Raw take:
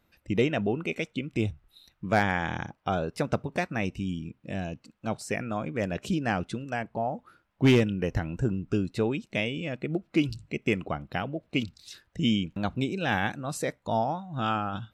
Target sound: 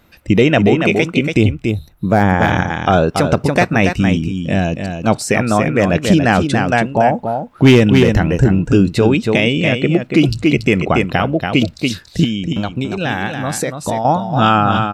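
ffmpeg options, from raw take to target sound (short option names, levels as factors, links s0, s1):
-filter_complex "[0:a]asettb=1/sr,asplit=3[s0][s1][s2];[s0]atrim=end=1.434[s3];[s1]atrim=start=1.43:end=2.42,asetpts=PTS-STARTPTS,afade=t=in:d=0.004:c=qsin,afade=t=out:st=0.986:d=0.004:c=qsin,equalizer=f=3300:w=0.43:g=-13[s4];[s2]atrim=start=2.416[s5];[s3][s4]acrossfade=d=0.004:c1=hsin:c2=qsin[s6];[s6][s5]acrossfade=d=0.004:c1=qsin:c2=hsin,asettb=1/sr,asplit=3[s7][s8][s9];[s7]atrim=end=12.244[s10];[s8]atrim=start=12.24:end=14.05,asetpts=PTS-STARTPTS,afade=t=in:d=0.004:c=qsin,afade=t=out:st=1.806:d=0.004:c=qsin,acompressor=threshold=0.02:ratio=6[s11];[s9]atrim=start=14.046[s12];[s10][s11]acrossfade=d=0.004:c1=hsin:c2=qsin[s13];[s13][s12]acrossfade=d=0.004:c1=qsin:c2=hsin,aecho=1:1:283:0.447,alimiter=level_in=7.94:limit=0.891:release=50:level=0:latency=1,volume=0.891"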